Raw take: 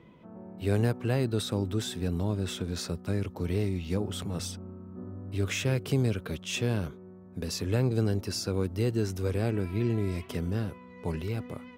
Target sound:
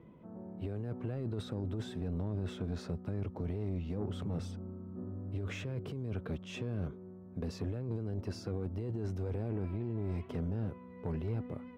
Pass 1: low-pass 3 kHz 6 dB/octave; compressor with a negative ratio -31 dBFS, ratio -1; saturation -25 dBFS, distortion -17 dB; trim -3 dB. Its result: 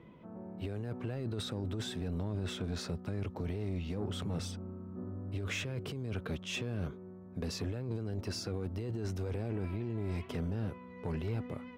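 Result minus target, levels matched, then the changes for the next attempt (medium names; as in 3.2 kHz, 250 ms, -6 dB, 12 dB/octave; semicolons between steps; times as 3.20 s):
4 kHz band +8.5 dB
change: low-pass 810 Hz 6 dB/octave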